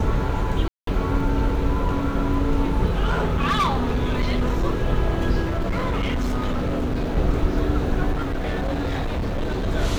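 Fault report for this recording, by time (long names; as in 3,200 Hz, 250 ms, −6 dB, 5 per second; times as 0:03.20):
0:00.68–0:00.87: drop-out 193 ms
0:03.06–0:04.64: clipping −16.5 dBFS
0:05.48–0:07.17: clipping −19.5 dBFS
0:08.12–0:09.68: clipping −21 dBFS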